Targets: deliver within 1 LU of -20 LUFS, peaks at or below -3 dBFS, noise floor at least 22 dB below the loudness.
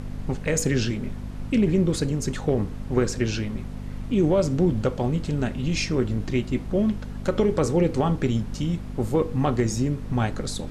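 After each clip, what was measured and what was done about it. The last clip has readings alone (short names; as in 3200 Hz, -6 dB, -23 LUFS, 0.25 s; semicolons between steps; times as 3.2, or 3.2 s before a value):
hum 50 Hz; harmonics up to 250 Hz; hum level -32 dBFS; noise floor -35 dBFS; noise floor target -47 dBFS; loudness -25.0 LUFS; peak -9.5 dBFS; loudness target -20.0 LUFS
-> de-hum 50 Hz, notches 5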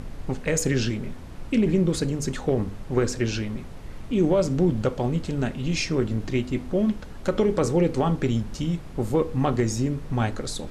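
hum none; noise floor -38 dBFS; noise floor target -47 dBFS
-> noise print and reduce 9 dB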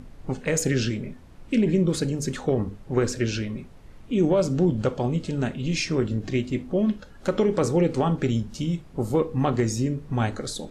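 noise floor -47 dBFS; noise floor target -48 dBFS
-> noise print and reduce 6 dB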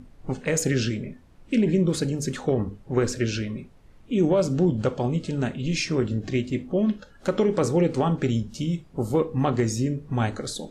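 noise floor -52 dBFS; loudness -25.5 LUFS; peak -11.0 dBFS; loudness target -20.0 LUFS
-> gain +5.5 dB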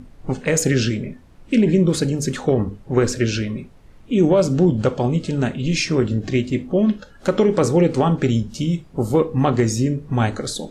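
loudness -20.0 LUFS; peak -5.5 dBFS; noise floor -47 dBFS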